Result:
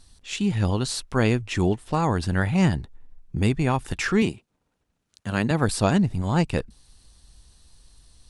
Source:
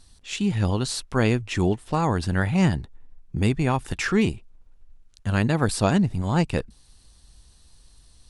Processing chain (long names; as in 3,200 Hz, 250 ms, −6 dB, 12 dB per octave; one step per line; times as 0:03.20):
0:04.22–0:05.51: high-pass filter 140 Hz 12 dB per octave